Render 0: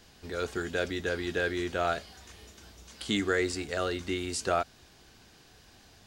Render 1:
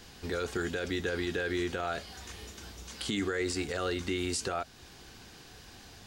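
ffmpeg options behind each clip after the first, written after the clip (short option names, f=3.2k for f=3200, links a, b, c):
-filter_complex "[0:a]bandreject=f=630:w=12,asplit=2[a][b];[b]acompressor=threshold=-39dB:ratio=6,volume=-1dB[c];[a][c]amix=inputs=2:normalize=0,alimiter=limit=-22.5dB:level=0:latency=1:release=37"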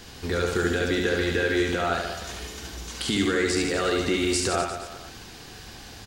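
-af "aecho=1:1:70|150.5|243.1|349.5|472:0.631|0.398|0.251|0.158|0.1,volume=6.5dB"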